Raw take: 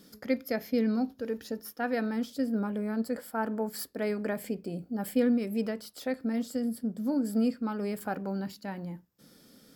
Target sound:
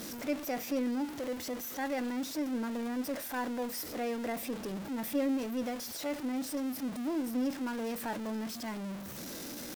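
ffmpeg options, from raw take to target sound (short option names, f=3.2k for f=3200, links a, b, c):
-af "aeval=exprs='val(0)+0.5*0.0335*sgn(val(0))':c=same,lowshelf=f=100:g=-2.5,asetrate=49501,aresample=44100,atempo=0.890899,volume=-7dB"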